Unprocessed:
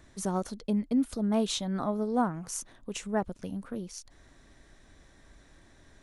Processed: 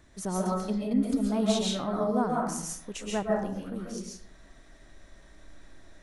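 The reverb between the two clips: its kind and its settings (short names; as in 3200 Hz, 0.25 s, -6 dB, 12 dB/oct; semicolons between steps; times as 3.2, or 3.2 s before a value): digital reverb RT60 0.64 s, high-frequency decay 0.6×, pre-delay 95 ms, DRR -3 dB; gain -2 dB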